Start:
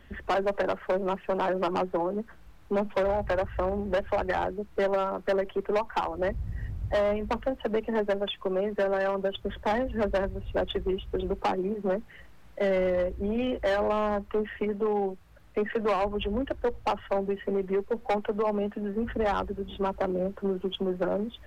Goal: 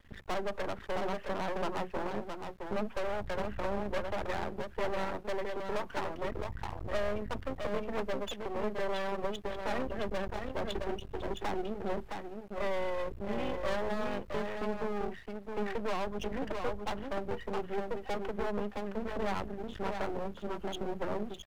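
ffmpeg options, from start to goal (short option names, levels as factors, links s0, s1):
-af "aecho=1:1:665:0.562,aeval=exprs='max(val(0),0)':c=same,volume=0.668"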